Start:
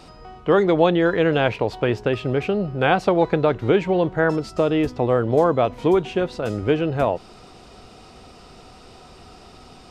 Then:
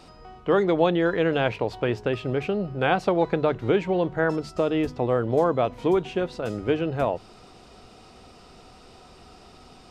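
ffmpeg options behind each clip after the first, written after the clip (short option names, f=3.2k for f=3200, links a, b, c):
-af "bandreject=f=50:t=h:w=6,bandreject=f=100:t=h:w=6,bandreject=f=150:t=h:w=6,volume=-4dB"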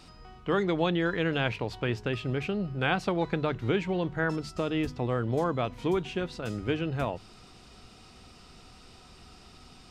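-af "equalizer=f=570:t=o:w=1.9:g=-9"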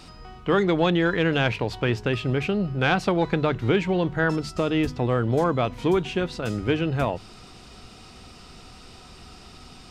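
-af "asoftclip=type=tanh:threshold=-14.5dB,volume=6.5dB"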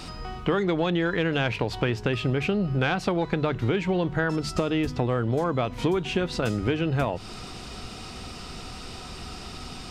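-af "acompressor=threshold=-29dB:ratio=6,volume=7dB"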